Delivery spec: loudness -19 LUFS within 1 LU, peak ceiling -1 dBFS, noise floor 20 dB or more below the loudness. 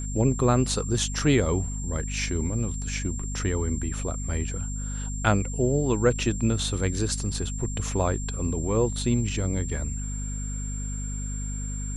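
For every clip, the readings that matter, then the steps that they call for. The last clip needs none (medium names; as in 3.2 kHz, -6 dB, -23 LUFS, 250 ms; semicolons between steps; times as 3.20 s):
hum 50 Hz; highest harmonic 250 Hz; hum level -29 dBFS; steady tone 7.4 kHz; tone level -37 dBFS; loudness -27.0 LUFS; peak level -8.0 dBFS; loudness target -19.0 LUFS
-> hum notches 50/100/150/200/250 Hz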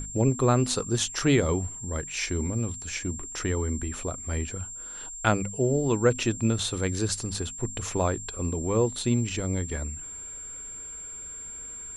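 hum not found; steady tone 7.4 kHz; tone level -37 dBFS
-> band-stop 7.4 kHz, Q 30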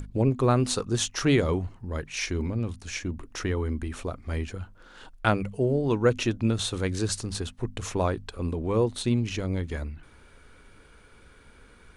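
steady tone not found; loudness -28.0 LUFS; peak level -8.0 dBFS; loudness target -19.0 LUFS
-> trim +9 dB; peak limiter -1 dBFS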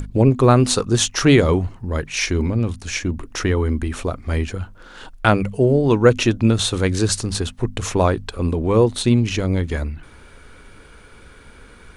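loudness -19.0 LUFS; peak level -1.0 dBFS; noise floor -45 dBFS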